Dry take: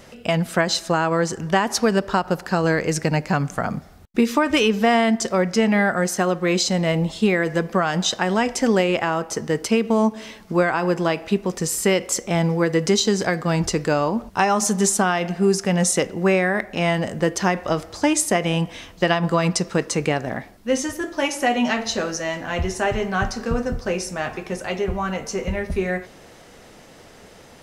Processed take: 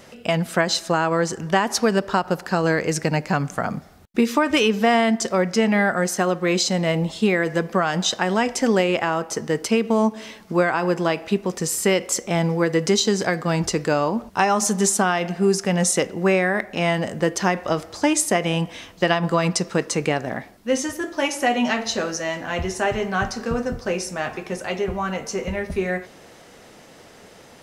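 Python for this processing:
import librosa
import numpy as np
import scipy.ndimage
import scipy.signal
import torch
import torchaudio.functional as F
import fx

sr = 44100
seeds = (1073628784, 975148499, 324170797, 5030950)

y = fx.low_shelf(x, sr, hz=66.0, db=-10.5)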